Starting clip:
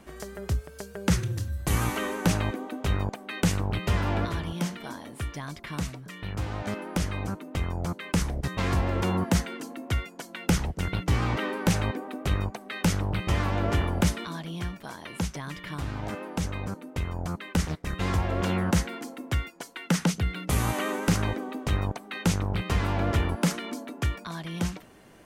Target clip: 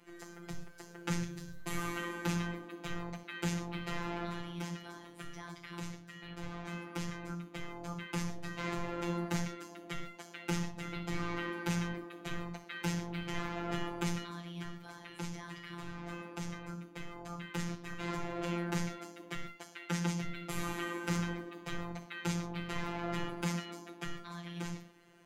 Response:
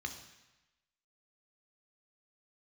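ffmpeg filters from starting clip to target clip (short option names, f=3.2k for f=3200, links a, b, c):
-filter_complex "[0:a]asettb=1/sr,asplit=3[a][b][c];[a]atrim=end=12.844[d];[b]atrim=start=12.84:end=13.39,asetpts=PTS-STARTPTS,afade=t=in:d=0.004:c=qsin,afade=t=out:st=0.546:d=0.004:c=qsin,bandreject=f=1.2k:w=11[e];[c]atrim=start=13.386[f];[d][e]acrossfade=d=0.004:c1=hsin:c2=qsin[g];[g][f]acrossfade=d=0.004:c1=qsin:c2=hsin[h];[1:a]atrim=start_sample=2205,atrim=end_sample=6174[i];[h][i]afir=irnorm=-1:irlink=0,afftfilt=real='hypot(re,im)*cos(PI*b)':imag='0':win_size=1024:overlap=0.75,volume=-5dB"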